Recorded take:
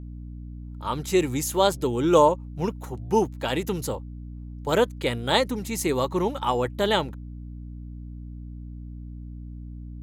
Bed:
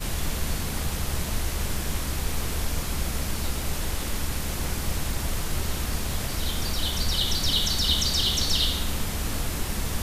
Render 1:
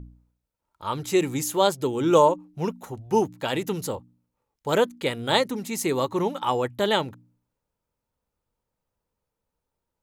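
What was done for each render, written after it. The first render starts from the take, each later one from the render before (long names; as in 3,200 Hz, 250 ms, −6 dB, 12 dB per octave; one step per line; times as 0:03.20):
hum removal 60 Hz, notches 5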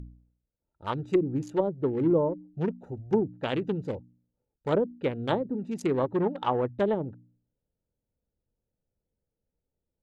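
adaptive Wiener filter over 41 samples
treble cut that deepens with the level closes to 360 Hz, closed at −18 dBFS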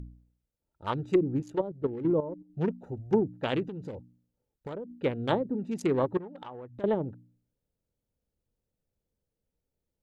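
0:01.40–0:02.50: output level in coarse steps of 12 dB
0:03.63–0:05.02: downward compressor 10 to 1, threshold −34 dBFS
0:06.17–0:06.84: downward compressor, threshold −40 dBFS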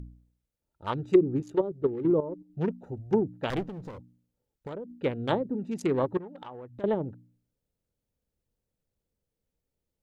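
0:01.14–0:02.36: hollow resonant body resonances 390/1,200/3,700 Hz, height 7 dB
0:03.50–0:03.98: lower of the sound and its delayed copy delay 0.55 ms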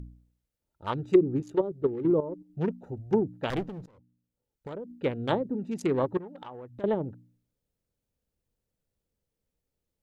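0:03.86–0:04.78: fade in, from −22.5 dB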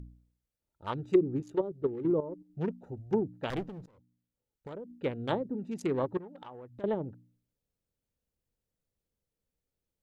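level −4 dB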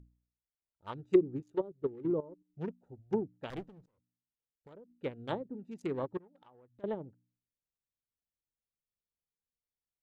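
expander for the loud parts 1.5 to 1, over −51 dBFS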